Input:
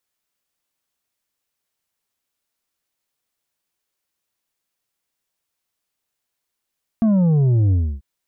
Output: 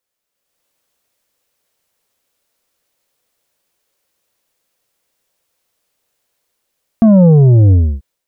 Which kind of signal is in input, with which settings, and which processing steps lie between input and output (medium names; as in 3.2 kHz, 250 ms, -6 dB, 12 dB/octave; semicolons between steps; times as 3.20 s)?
sub drop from 230 Hz, over 0.99 s, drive 6 dB, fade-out 0.29 s, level -13.5 dB
peaking EQ 520 Hz +7.5 dB 0.61 oct; level rider gain up to 10 dB